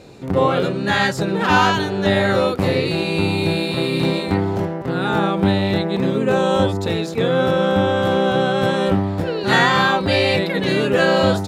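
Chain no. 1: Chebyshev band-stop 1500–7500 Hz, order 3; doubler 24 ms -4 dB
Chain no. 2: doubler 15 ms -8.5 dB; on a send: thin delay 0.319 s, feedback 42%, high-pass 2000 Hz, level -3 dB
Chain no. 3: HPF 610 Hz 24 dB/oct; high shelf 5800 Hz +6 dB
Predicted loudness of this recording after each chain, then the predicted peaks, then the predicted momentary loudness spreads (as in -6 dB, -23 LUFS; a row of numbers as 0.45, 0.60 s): -18.5, -17.0, -21.0 LUFS; -2.0, -2.0, -2.5 dBFS; 5, 5, 12 LU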